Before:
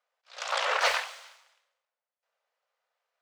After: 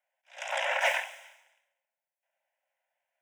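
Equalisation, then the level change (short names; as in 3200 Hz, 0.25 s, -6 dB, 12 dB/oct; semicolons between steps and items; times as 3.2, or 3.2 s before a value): Chebyshev high-pass 530 Hz, order 8; fixed phaser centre 1200 Hz, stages 6; +2.0 dB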